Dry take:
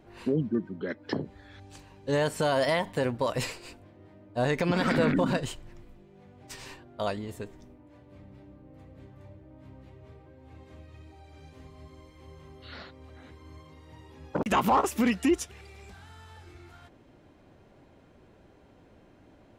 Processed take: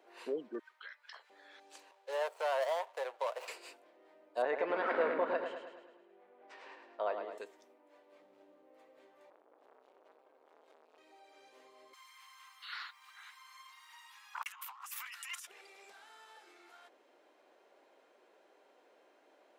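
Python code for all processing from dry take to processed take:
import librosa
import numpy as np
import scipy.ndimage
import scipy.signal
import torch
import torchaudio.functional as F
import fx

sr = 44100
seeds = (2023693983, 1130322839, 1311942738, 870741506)

y = fx.chain(x, sr, fx.highpass(hz=1200.0, slope=24),
    fx.over_compress(threshold_db=-45.0, ratio=-1.0), at=(0.59, 1.3))
y = fx.chain(y, sr, fx.median_filter(points=25),
    fx.highpass(hz=540.0, slope=24),
    fx.high_shelf(hz=11000.0, db=-5.5), at=(1.91, 3.48))
y = fx.chain(y, sr, fx.lowpass(hz=1900.0, slope=12),
    fx.echo_feedback(ms=106, feedback_pct=54, wet_db=-7), at=(4.42, 7.38))
y = fx.chain(y, sr, fx.median_filter(points=25),
    fx.low_shelf(hz=190.0, db=7.0), at=(8.21, 8.64))
y = fx.chain(y, sr, fx.peak_eq(hz=1900.0, db=-6.5, octaves=0.3),
    fx.transformer_sat(knee_hz=900.0), at=(9.3, 10.98))
y = fx.chain(y, sr, fx.steep_highpass(hz=1000.0, slope=48),
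    fx.high_shelf(hz=11000.0, db=11.0),
    fx.over_compress(threshold_db=-42.0, ratio=-1.0), at=(11.93, 15.47))
y = scipy.signal.sosfilt(scipy.signal.butter(4, 420.0, 'highpass', fs=sr, output='sos'), y)
y = fx.dynamic_eq(y, sr, hz=5300.0, q=0.9, threshold_db=-49.0, ratio=4.0, max_db=-4)
y = y * librosa.db_to_amplitude(-4.0)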